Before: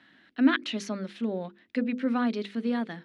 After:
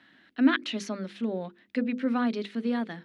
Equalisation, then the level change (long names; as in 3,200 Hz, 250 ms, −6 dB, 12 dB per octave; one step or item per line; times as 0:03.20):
mains-hum notches 50/100/150/200 Hz
0.0 dB